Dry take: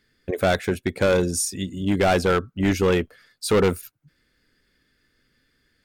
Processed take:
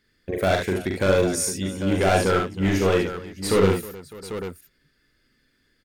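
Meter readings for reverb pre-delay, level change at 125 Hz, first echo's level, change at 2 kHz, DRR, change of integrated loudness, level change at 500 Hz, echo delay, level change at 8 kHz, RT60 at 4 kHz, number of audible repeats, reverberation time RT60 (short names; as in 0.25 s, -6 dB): none, +1.0 dB, -3.5 dB, 0.0 dB, none, -0.5 dB, +0.5 dB, 42 ms, 0.0 dB, none, 4, none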